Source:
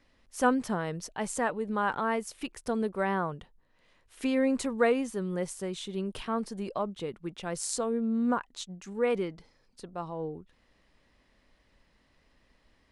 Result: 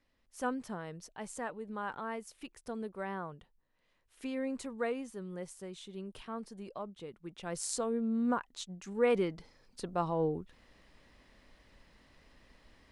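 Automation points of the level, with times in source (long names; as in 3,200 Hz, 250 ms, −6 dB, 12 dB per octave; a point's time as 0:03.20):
0:07.16 −10 dB
0:07.56 −3.5 dB
0:08.55 −3.5 dB
0:09.90 +4.5 dB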